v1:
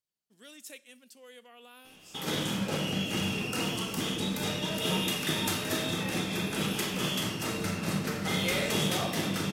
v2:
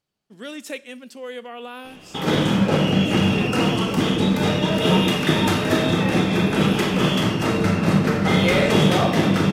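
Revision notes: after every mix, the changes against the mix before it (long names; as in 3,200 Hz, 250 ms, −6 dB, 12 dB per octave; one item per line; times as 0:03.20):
speech +5.5 dB
master: remove first-order pre-emphasis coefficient 0.8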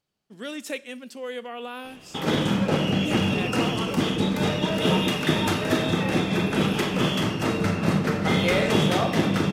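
background: send −6.0 dB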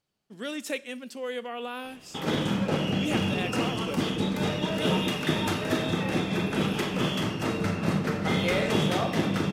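background −4.0 dB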